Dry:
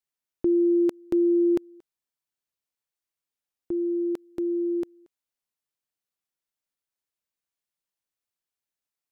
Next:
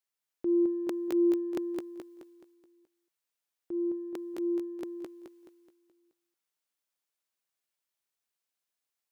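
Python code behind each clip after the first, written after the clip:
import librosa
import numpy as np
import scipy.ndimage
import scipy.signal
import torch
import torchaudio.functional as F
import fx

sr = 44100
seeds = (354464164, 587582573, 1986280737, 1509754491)

y = fx.low_shelf(x, sr, hz=220.0, db=-11.5)
y = fx.transient(y, sr, attack_db=-6, sustain_db=9)
y = fx.echo_feedback(y, sr, ms=213, feedback_pct=44, wet_db=-3.0)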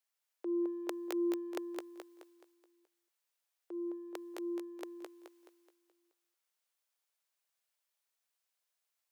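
y = scipy.signal.sosfilt(scipy.signal.butter(4, 450.0, 'highpass', fs=sr, output='sos'), x)
y = F.gain(torch.from_numpy(y), 1.5).numpy()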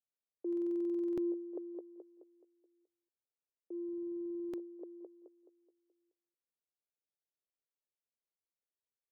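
y = fx.ladder_lowpass(x, sr, hz=550.0, resonance_pct=30)
y = fx.transient(y, sr, attack_db=4, sustain_db=0)
y = fx.buffer_glitch(y, sr, at_s=(0.48, 3.84), block=2048, repeats=14)
y = F.gain(torch.from_numpy(y), 1.0).numpy()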